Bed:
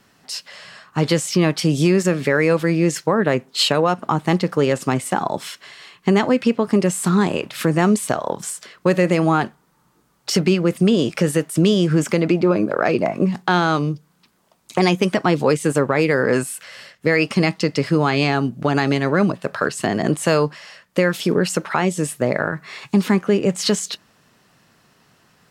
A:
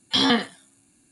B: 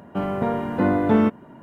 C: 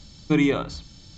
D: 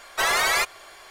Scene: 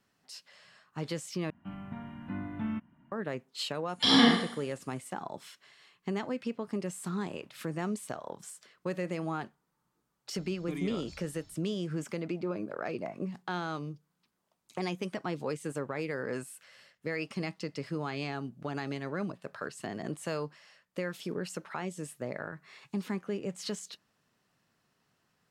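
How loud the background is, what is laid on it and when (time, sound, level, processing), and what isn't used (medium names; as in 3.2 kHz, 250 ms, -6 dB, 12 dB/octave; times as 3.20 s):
bed -18 dB
1.50 s: replace with B -13.5 dB + FFT filter 180 Hz 0 dB, 310 Hz -6 dB, 440 Hz -26 dB, 670 Hz -11 dB, 2.8 kHz +1 dB, 4.5 kHz -10 dB
3.89 s: add A -6 dB + Schroeder reverb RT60 0.62 s, combs from 30 ms, DRR -1.5 dB
10.38 s: add C -14 dB + peak limiter -15.5 dBFS
not used: D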